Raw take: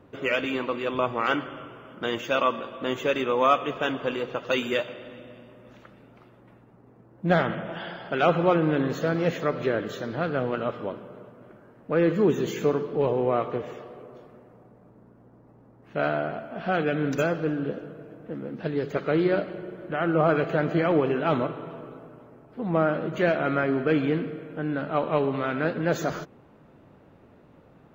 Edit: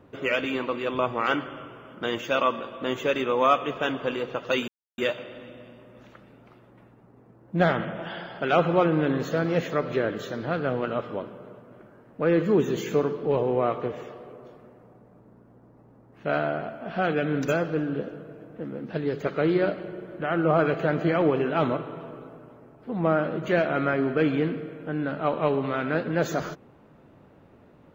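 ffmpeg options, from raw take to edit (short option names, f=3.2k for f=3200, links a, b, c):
-filter_complex "[0:a]asplit=2[a][b];[a]atrim=end=4.68,asetpts=PTS-STARTPTS,afade=t=out:st=4.676:d=0.004:c=hsin,apad=pad_dur=0.3[c];[b]atrim=start=4.68,asetpts=PTS-STARTPTS,afade=t=in:d=0.004:c=hsin[d];[c][d]concat=n=2:v=0:a=1"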